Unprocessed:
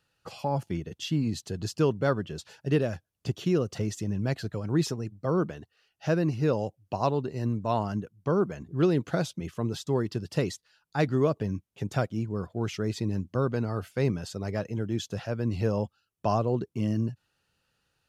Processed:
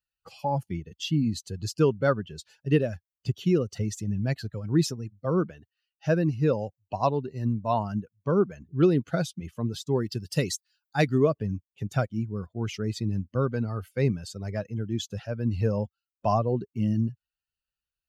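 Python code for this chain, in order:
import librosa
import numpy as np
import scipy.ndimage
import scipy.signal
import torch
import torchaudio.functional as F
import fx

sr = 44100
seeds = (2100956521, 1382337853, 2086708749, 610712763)

y = fx.bin_expand(x, sr, power=1.5)
y = fx.high_shelf(y, sr, hz=4300.0, db=11.0, at=(10.02, 11.18))
y = F.gain(torch.from_numpy(y), 4.5).numpy()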